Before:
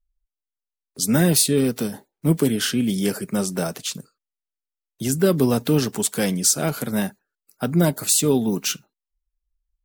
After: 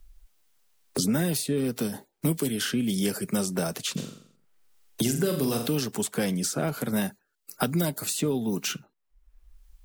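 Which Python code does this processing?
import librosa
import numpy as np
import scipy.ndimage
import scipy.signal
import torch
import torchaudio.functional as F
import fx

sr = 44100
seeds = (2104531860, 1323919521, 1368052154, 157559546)

y = fx.room_flutter(x, sr, wall_m=7.5, rt60_s=0.45, at=(3.96, 5.66), fade=0.02)
y = fx.band_squash(y, sr, depth_pct=100)
y = F.gain(torch.from_numpy(y), -6.5).numpy()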